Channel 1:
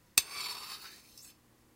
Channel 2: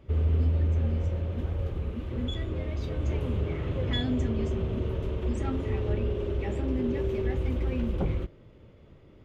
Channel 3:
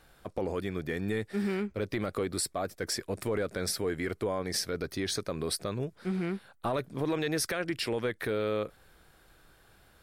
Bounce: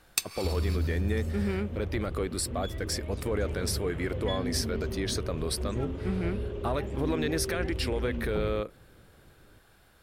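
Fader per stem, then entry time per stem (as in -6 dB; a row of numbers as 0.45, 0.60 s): -2.5, -5.0, 0.0 dB; 0.00, 0.35, 0.00 s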